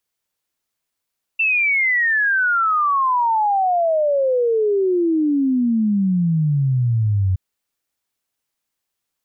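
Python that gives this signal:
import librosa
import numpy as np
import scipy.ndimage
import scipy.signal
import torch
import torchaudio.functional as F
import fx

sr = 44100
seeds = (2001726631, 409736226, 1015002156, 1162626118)

y = fx.ess(sr, length_s=5.97, from_hz=2700.0, to_hz=91.0, level_db=-14.5)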